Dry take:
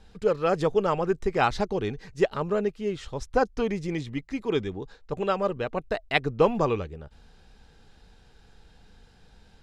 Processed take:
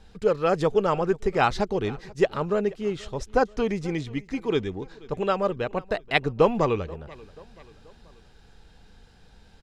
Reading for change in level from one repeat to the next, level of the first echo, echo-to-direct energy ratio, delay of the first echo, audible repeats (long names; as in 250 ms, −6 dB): −6.0 dB, −22.5 dB, −21.5 dB, 483 ms, 3